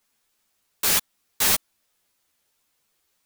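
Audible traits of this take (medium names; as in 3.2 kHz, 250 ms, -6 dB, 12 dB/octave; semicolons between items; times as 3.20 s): tremolo saw up 1.9 Hz, depth 55%; a quantiser's noise floor 12-bit, dither triangular; a shimmering, thickened sound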